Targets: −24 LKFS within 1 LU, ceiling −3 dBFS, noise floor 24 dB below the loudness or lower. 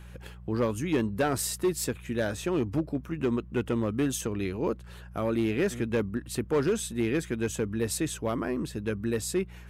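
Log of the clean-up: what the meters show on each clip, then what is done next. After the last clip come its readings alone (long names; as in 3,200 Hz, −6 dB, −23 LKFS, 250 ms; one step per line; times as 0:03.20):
share of clipped samples 1.2%; peaks flattened at −20.0 dBFS; mains hum 60 Hz; hum harmonics up to 180 Hz; level of the hum −45 dBFS; integrated loudness −30.0 LKFS; sample peak −20.0 dBFS; target loudness −24.0 LKFS
→ clipped peaks rebuilt −20 dBFS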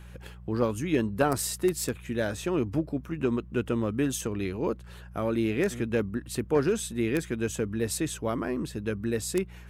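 share of clipped samples 0.0%; mains hum 60 Hz; hum harmonics up to 180 Hz; level of the hum −44 dBFS
→ hum removal 60 Hz, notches 3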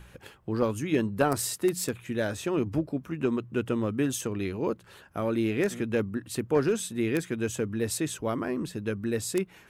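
mains hum none found; integrated loudness −29.5 LKFS; sample peak −11.0 dBFS; target loudness −24.0 LKFS
→ level +5.5 dB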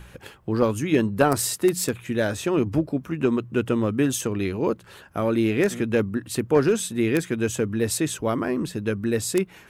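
integrated loudness −24.0 LKFS; sample peak −5.5 dBFS; background noise floor −50 dBFS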